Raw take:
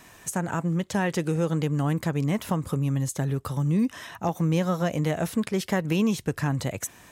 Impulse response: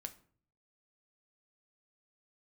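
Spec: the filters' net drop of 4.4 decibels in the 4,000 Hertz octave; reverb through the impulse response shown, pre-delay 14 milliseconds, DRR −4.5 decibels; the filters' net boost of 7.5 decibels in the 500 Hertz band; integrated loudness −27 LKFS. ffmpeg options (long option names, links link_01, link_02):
-filter_complex "[0:a]equalizer=frequency=500:width_type=o:gain=9,equalizer=frequency=4000:width_type=o:gain=-6.5,asplit=2[link_01][link_02];[1:a]atrim=start_sample=2205,adelay=14[link_03];[link_02][link_03]afir=irnorm=-1:irlink=0,volume=8.5dB[link_04];[link_01][link_04]amix=inputs=2:normalize=0,volume=-9.5dB"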